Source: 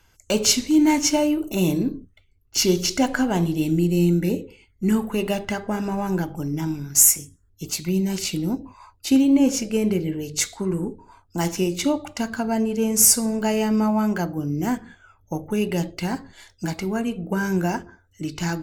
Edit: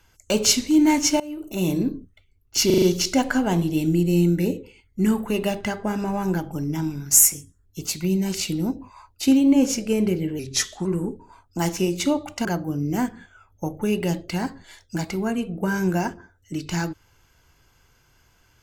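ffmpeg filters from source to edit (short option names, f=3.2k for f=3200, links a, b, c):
-filter_complex "[0:a]asplit=9[a][b][c][d][e][f][g][h][i];[a]atrim=end=1.2,asetpts=PTS-STARTPTS,afade=t=out:st=1.196:d=0.004:c=hsin:silence=0.0891251[j];[b]atrim=start=1.2:end=2.702,asetpts=PTS-STARTPTS,afade=t=in:d=0.61:silence=0.0891251[k];[c]atrim=start=2.658:end=2.702[l];[d]atrim=start=2.658:end=2.702[m];[e]atrim=start=2.658:end=2.702[n];[f]atrim=start=2.658:end=10.234[o];[g]atrim=start=10.23:end=10.64,asetpts=PTS-STARTPTS,asetrate=39249,aresample=44100[p];[h]atrim=start=10.636:end=12.242[q];[i]atrim=start=14.138[r];[j][k]concat=n=2:v=0:a=1[s];[s][l]acrossfade=d=0.004:c1=hsin:c2=hsin[t];[t][m]acrossfade=d=0.004:c1=hsin:c2=hsin[u];[u][n]acrossfade=d=0.004:c1=hsin:c2=hsin[v];[v][o]acrossfade=d=0.004:c1=hsin:c2=hsin[w];[w][p]acrossfade=d=0.004:c1=hsin:c2=hsin[x];[x][q]acrossfade=d=0.004:c1=hsin:c2=hsin[y];[y][r]acrossfade=d=0.004:c1=hsin:c2=hsin"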